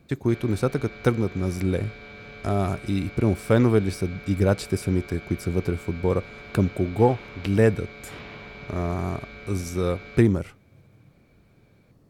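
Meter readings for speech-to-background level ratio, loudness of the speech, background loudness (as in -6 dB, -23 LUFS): 16.5 dB, -25.0 LUFS, -41.5 LUFS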